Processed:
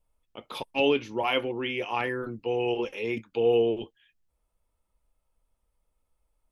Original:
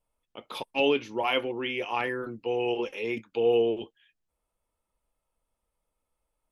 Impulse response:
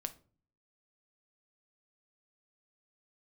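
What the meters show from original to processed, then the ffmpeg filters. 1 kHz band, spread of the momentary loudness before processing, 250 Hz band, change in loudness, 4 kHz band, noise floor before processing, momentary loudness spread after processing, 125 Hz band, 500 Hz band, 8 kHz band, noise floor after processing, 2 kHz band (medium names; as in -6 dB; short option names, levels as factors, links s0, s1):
0.0 dB, 10 LU, +1.0 dB, +0.5 dB, 0.0 dB, -84 dBFS, 10 LU, +4.5 dB, +0.5 dB, no reading, -78 dBFS, 0.0 dB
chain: -af "lowshelf=f=110:g=10"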